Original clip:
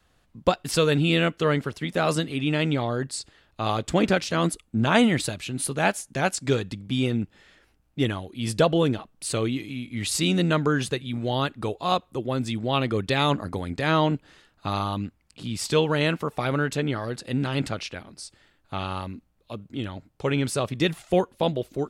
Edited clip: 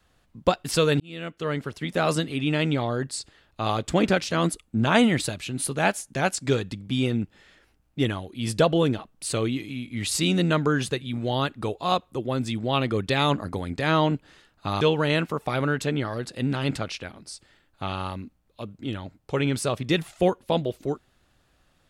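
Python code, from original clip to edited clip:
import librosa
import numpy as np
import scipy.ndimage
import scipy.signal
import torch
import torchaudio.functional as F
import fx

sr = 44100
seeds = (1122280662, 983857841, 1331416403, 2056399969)

y = fx.edit(x, sr, fx.fade_in_span(start_s=1.0, length_s=0.93),
    fx.cut(start_s=14.81, length_s=0.91), tone=tone)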